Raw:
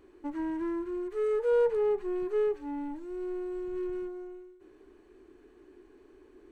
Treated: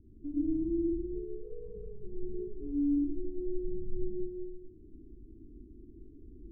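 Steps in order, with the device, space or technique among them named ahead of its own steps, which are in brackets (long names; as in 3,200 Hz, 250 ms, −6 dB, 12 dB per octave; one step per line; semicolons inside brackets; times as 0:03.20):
club heard from the street (brickwall limiter −29.5 dBFS, peak gain reduction 11 dB; low-pass filter 210 Hz 24 dB per octave; convolution reverb RT60 1.0 s, pre-delay 60 ms, DRR −5 dB)
0:01.81–0:02.34: dynamic equaliser 380 Hz, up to −4 dB, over −58 dBFS, Q 1.2
level +9 dB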